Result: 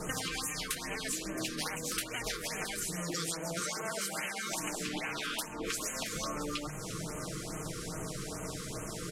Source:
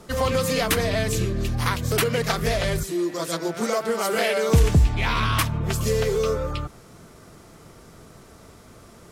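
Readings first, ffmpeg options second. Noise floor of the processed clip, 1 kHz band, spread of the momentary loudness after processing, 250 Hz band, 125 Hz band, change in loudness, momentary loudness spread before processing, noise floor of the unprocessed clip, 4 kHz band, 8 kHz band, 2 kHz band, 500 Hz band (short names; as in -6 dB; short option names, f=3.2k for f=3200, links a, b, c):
-42 dBFS, -12.5 dB, 5 LU, -12.0 dB, -19.5 dB, -13.0 dB, 7 LU, -48 dBFS, -7.5 dB, -3.0 dB, -9.5 dB, -17.0 dB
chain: -filter_complex "[0:a]afftfilt=real='re*lt(hypot(re,im),0.224)':imag='im*lt(hypot(re,im),0.224)':win_size=1024:overlap=0.75,lowpass=9.3k,aemphasis=mode=production:type=cd,bandreject=f=50:t=h:w=6,bandreject=f=100:t=h:w=6,bandreject=f=150:t=h:w=6,adynamicequalizer=threshold=0.0158:dfrequency=4500:dqfactor=0.89:tfrequency=4500:tqfactor=0.89:attack=5:release=100:ratio=0.375:range=2:mode=cutabove:tftype=bell,aecho=1:1:6.4:0.59,acompressor=threshold=-39dB:ratio=16,asplit=2[a][b];[b]aecho=0:1:670|1340|2010:0.266|0.0585|0.0129[c];[a][c]amix=inputs=2:normalize=0,afftfilt=real='re*(1-between(b*sr/1024,720*pow(4500/720,0.5+0.5*sin(2*PI*2.4*pts/sr))/1.41,720*pow(4500/720,0.5+0.5*sin(2*PI*2.4*pts/sr))*1.41))':imag='im*(1-between(b*sr/1024,720*pow(4500/720,0.5+0.5*sin(2*PI*2.4*pts/sr))/1.41,720*pow(4500/720,0.5+0.5*sin(2*PI*2.4*pts/sr))*1.41))':win_size=1024:overlap=0.75,volume=6.5dB"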